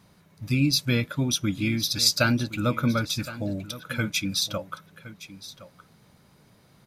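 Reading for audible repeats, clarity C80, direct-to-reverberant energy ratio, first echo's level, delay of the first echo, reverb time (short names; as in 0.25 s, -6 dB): 1, none, none, -16.0 dB, 1.066 s, none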